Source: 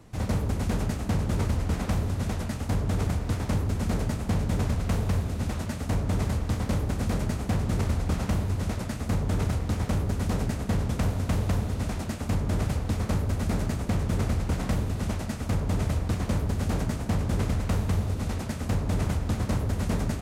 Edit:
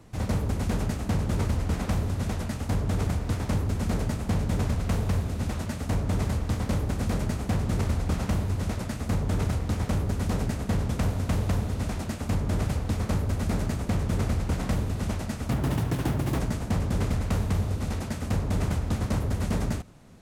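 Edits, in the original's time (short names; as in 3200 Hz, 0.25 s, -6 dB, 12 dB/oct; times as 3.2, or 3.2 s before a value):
15.51–16.78 speed 144%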